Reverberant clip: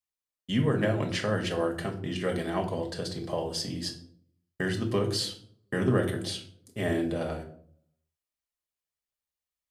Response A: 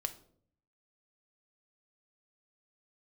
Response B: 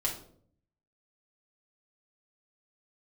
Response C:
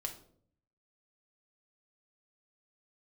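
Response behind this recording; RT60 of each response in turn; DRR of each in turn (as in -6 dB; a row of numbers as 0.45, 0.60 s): C; 0.60, 0.60, 0.60 s; 6.5, -4.0, 1.5 dB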